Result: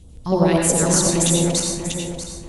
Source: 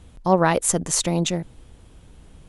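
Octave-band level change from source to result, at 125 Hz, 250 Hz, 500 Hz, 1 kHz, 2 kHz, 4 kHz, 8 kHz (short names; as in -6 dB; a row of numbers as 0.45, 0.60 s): +5.5, +5.5, +3.0, -2.5, 0.0, +5.5, +6.5 dB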